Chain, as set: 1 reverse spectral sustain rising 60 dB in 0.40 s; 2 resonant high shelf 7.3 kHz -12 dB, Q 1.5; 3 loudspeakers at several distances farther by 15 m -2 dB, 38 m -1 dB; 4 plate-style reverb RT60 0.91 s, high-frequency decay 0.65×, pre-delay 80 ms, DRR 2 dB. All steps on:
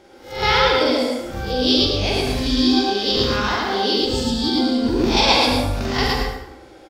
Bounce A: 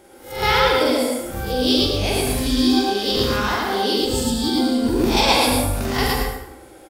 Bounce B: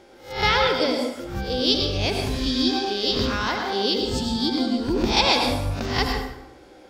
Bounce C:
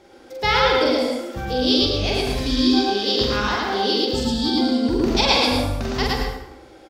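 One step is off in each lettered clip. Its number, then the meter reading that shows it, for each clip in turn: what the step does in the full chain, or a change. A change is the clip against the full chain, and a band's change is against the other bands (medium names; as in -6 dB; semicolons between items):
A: 2, 8 kHz band +6.0 dB; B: 3, echo-to-direct 4.5 dB to -2.0 dB; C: 1, loudness change -1.5 LU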